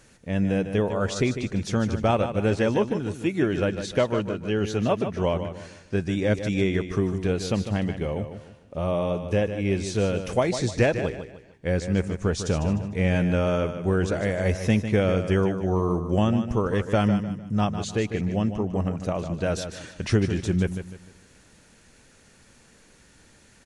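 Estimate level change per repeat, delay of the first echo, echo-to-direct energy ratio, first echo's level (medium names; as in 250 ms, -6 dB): -9.0 dB, 151 ms, -9.0 dB, -9.5 dB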